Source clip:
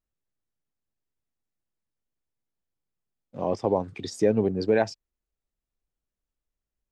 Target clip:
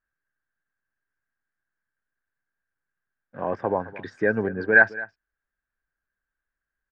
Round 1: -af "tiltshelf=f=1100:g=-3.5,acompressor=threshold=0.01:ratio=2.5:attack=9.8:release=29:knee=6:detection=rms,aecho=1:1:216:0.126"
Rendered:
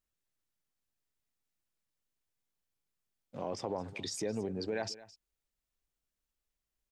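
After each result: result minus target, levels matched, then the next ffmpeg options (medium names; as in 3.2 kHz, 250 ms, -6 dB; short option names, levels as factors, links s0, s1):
compression: peak gain reduction +13.5 dB; 2 kHz band -13.0 dB
-af "tiltshelf=f=1100:g=-3.5,aecho=1:1:216:0.126"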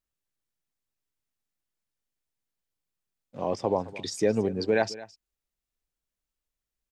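2 kHz band -12.0 dB
-af "lowpass=f=1600:t=q:w=14,tiltshelf=f=1100:g=-3.5,aecho=1:1:216:0.126"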